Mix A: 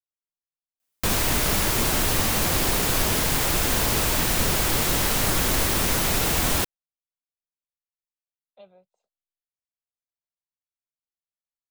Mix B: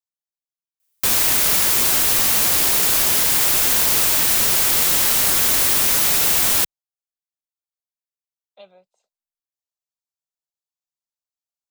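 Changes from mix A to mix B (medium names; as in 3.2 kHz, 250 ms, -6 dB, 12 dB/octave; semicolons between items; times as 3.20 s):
speech +6.0 dB; master: add tilt EQ +2.5 dB/octave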